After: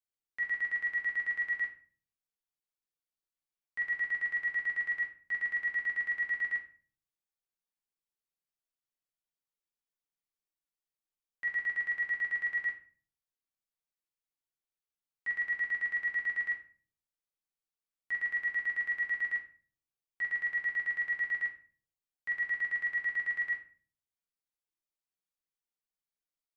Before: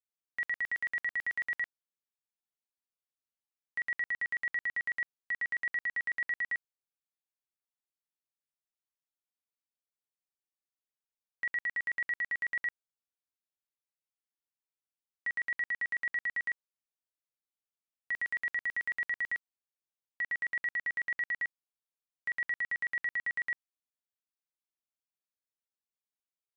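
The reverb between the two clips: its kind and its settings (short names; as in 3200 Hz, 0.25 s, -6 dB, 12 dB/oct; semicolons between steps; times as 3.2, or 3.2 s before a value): shoebox room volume 33 m³, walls mixed, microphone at 0.58 m; gain -6 dB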